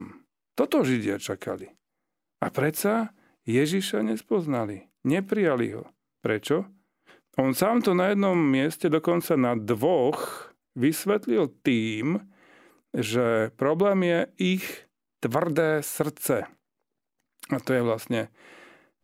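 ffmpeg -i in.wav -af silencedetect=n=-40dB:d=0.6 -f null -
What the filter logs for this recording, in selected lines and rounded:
silence_start: 1.67
silence_end: 2.42 | silence_duration: 0.75
silence_start: 12.23
silence_end: 12.94 | silence_duration: 0.71
silence_start: 16.47
silence_end: 17.40 | silence_duration: 0.93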